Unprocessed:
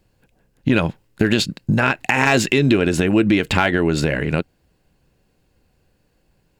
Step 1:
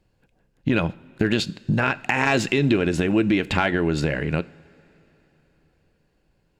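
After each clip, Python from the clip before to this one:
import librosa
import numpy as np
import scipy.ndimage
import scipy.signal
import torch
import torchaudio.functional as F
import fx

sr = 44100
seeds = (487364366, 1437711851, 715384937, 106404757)

y = fx.high_shelf(x, sr, hz=9100.0, db=-11.5)
y = fx.rev_double_slope(y, sr, seeds[0], early_s=0.44, late_s=3.9, knee_db=-17, drr_db=17.0)
y = y * 10.0 ** (-4.0 / 20.0)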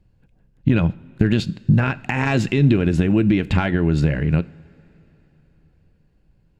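y = fx.bass_treble(x, sr, bass_db=12, treble_db=-3)
y = y * 10.0 ** (-2.5 / 20.0)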